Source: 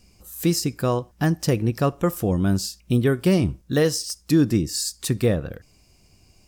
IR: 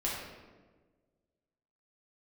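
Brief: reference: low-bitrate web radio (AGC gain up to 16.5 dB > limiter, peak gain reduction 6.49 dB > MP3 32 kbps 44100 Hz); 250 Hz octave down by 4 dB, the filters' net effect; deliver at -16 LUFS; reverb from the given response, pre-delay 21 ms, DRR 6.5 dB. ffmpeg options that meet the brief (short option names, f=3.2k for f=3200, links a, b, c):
-filter_complex "[0:a]equalizer=f=250:t=o:g=-6,asplit=2[a][b];[1:a]atrim=start_sample=2205,adelay=21[c];[b][c]afir=irnorm=-1:irlink=0,volume=-12dB[d];[a][d]amix=inputs=2:normalize=0,dynaudnorm=m=16.5dB,alimiter=limit=-15.5dB:level=0:latency=1,volume=11dB" -ar 44100 -c:a libmp3lame -b:a 32k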